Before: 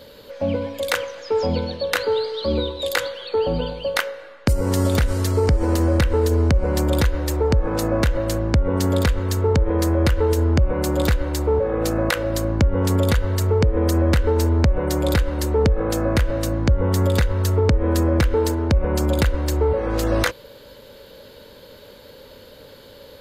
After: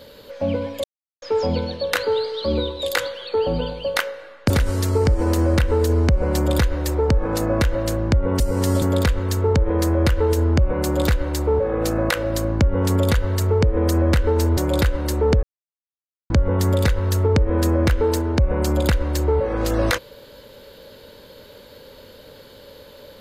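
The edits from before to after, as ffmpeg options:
-filter_complex "[0:a]asplit=9[a][b][c][d][e][f][g][h][i];[a]atrim=end=0.84,asetpts=PTS-STARTPTS,afade=t=out:st=0.836:d=0.004:c=hsin[j];[b]atrim=start=0.84:end=1.22,asetpts=PTS-STARTPTS,volume=0[k];[c]atrim=start=1.22:end=4.502,asetpts=PTS-STARTPTS,afade=t=in:d=0.004:c=hsin[l];[d]atrim=start=4.918:end=8.822[m];[e]atrim=start=4.498:end=4.922[n];[f]atrim=start=8.818:end=14.572[o];[g]atrim=start=14.898:end=15.76,asetpts=PTS-STARTPTS,afade=t=out:st=0.858:d=0.004:c=hsin[p];[h]atrim=start=15.76:end=16.63,asetpts=PTS-STARTPTS,volume=0[q];[i]atrim=start=16.63,asetpts=PTS-STARTPTS,afade=t=in:d=0.004:c=hsin[r];[j][k][l]concat=n=3:v=0:a=1[s];[s][m]acrossfade=d=0.004:c1=hsin:c2=hsin[t];[t][n]acrossfade=d=0.004:c1=hsin:c2=hsin[u];[u][o]acrossfade=d=0.004:c1=hsin:c2=hsin[v];[p][q][r]concat=n=3:v=0:a=1[w];[v][w]acrossfade=d=0.004:c1=hsin:c2=hsin"

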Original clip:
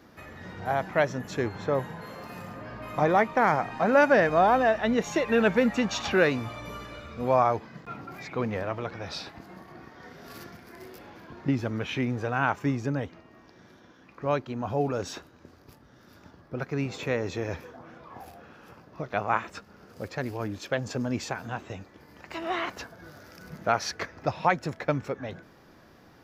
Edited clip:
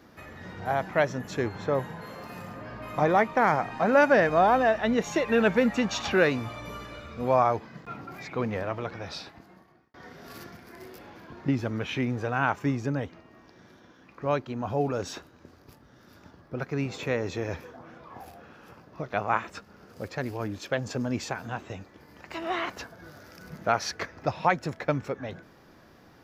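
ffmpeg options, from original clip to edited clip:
-filter_complex "[0:a]asplit=2[a][b];[a]atrim=end=9.94,asetpts=PTS-STARTPTS,afade=t=out:st=8.96:d=0.98[c];[b]atrim=start=9.94,asetpts=PTS-STARTPTS,afade=t=in:d=0.004:c=hsin[d];[c][d]concat=n=2:v=0:a=1"

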